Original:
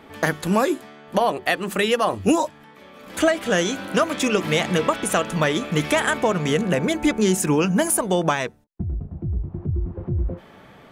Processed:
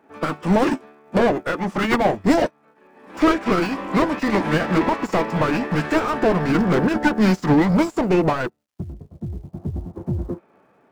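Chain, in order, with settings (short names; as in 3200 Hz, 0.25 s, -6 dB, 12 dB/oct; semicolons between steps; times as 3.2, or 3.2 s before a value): overdrive pedal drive 30 dB, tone 1200 Hz, clips at -5.5 dBFS; formant shift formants -5 st; crackle 490/s -39 dBFS; upward expander 2.5:1, over -32 dBFS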